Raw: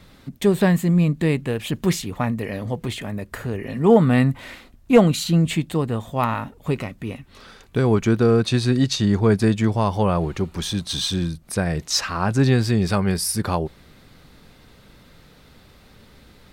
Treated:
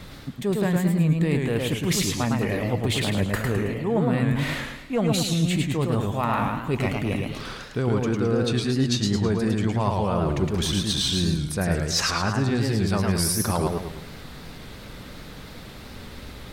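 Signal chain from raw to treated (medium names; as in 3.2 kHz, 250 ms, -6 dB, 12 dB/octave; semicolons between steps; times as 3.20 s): reverse; compression 6:1, threshold -30 dBFS, peak gain reduction 20.5 dB; reverse; modulated delay 108 ms, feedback 45%, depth 165 cents, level -3 dB; trim +7.5 dB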